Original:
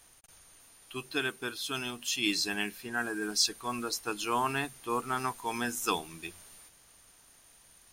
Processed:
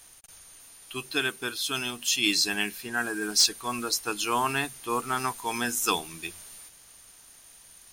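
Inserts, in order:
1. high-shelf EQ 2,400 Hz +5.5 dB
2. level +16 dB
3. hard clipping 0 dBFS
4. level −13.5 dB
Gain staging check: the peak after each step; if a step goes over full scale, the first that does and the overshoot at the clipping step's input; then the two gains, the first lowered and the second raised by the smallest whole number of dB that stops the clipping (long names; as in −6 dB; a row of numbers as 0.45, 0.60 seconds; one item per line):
−9.5, +6.5, 0.0, −13.5 dBFS
step 2, 6.5 dB
step 2 +9 dB, step 4 −6.5 dB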